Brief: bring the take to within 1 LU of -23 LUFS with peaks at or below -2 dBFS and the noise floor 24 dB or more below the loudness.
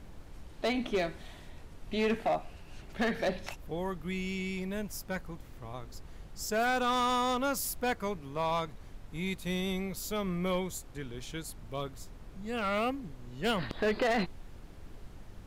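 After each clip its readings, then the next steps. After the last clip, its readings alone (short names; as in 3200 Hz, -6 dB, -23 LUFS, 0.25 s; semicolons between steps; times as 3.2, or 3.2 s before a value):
clipped 1.1%; flat tops at -24.0 dBFS; noise floor -50 dBFS; noise floor target -58 dBFS; loudness -33.5 LUFS; peak -24.0 dBFS; loudness target -23.0 LUFS
-> clip repair -24 dBFS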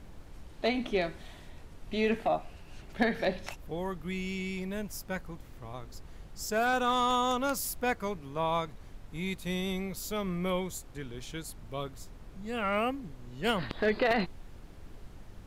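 clipped 0.0%; noise floor -50 dBFS; noise floor target -57 dBFS
-> noise print and reduce 7 dB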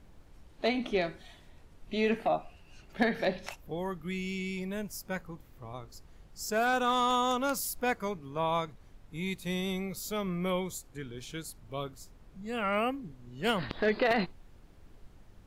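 noise floor -57 dBFS; loudness -32.5 LUFS; peak -14.5 dBFS; loudness target -23.0 LUFS
-> gain +9.5 dB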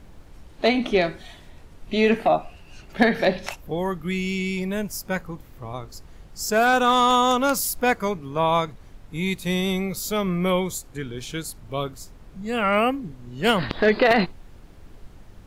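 loudness -23.0 LUFS; peak -5.0 dBFS; noise floor -47 dBFS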